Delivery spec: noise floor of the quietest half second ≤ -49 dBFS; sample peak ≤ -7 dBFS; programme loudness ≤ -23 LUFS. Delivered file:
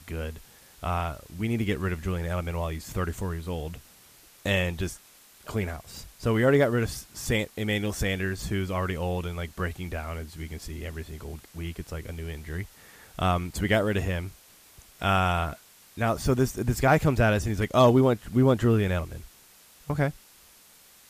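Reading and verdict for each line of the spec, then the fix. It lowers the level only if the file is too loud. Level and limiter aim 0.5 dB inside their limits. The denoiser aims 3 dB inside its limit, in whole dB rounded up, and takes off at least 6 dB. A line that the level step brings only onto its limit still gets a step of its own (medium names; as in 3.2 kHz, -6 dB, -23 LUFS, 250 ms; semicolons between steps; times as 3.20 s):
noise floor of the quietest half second -55 dBFS: pass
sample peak -9.0 dBFS: pass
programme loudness -27.5 LUFS: pass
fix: none needed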